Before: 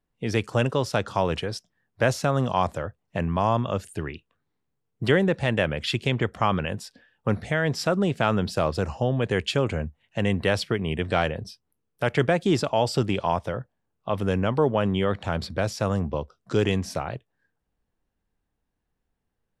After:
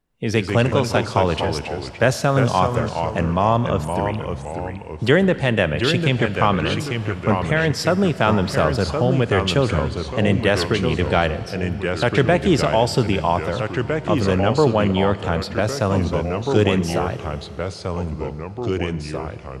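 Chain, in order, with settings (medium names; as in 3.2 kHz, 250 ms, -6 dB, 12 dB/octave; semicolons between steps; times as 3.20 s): ever faster or slower copies 104 ms, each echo -2 st, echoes 2, each echo -6 dB; Schroeder reverb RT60 3.8 s, combs from 26 ms, DRR 15 dB; trim +5 dB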